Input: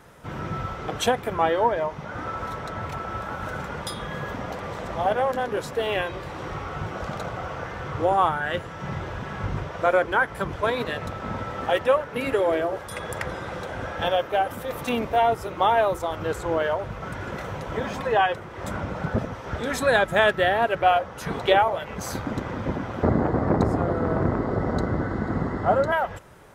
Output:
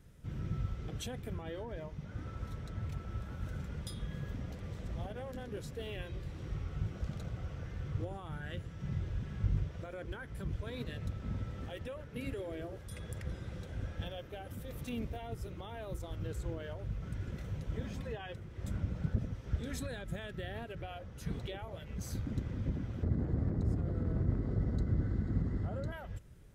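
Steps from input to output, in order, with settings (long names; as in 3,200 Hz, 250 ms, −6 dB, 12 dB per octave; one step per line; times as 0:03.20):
brickwall limiter −16.5 dBFS, peak gain reduction 10 dB
guitar amp tone stack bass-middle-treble 10-0-1
level +8 dB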